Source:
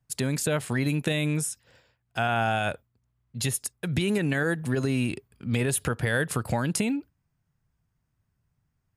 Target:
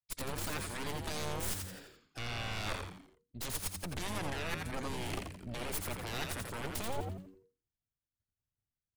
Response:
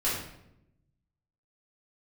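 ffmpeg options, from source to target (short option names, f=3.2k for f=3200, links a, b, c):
-filter_complex "[0:a]highpass=f=84:p=1,agate=range=-33dB:threshold=-60dB:ratio=3:detection=peak,equalizer=f=160:t=o:w=0.67:g=-9,equalizer=f=1k:t=o:w=0.67:g=-9,equalizer=f=2.5k:t=o:w=0.67:g=-5,areverse,acompressor=threshold=-42dB:ratio=6,areverse,aeval=exprs='0.0316*(cos(1*acos(clip(val(0)/0.0316,-1,1)))-cos(1*PI/2))+0.00398*(cos(2*acos(clip(val(0)/0.0316,-1,1)))-cos(2*PI/2))+0.01*(cos(6*acos(clip(val(0)/0.0316,-1,1)))-cos(6*PI/2))+0.0158*(cos(7*acos(clip(val(0)/0.0316,-1,1)))-cos(7*PI/2))':c=same,asplit=2[a][b];[b]asetrate=22050,aresample=44100,atempo=2,volume=-10dB[c];[a][c]amix=inputs=2:normalize=0,asplit=2[d][e];[e]asplit=5[f][g][h][i][j];[f]adelay=85,afreqshift=-95,volume=-4.5dB[k];[g]adelay=170,afreqshift=-190,volume=-12dB[l];[h]adelay=255,afreqshift=-285,volume=-19.6dB[m];[i]adelay=340,afreqshift=-380,volume=-27.1dB[n];[j]adelay=425,afreqshift=-475,volume=-34.6dB[o];[k][l][m][n][o]amix=inputs=5:normalize=0[p];[d][p]amix=inputs=2:normalize=0"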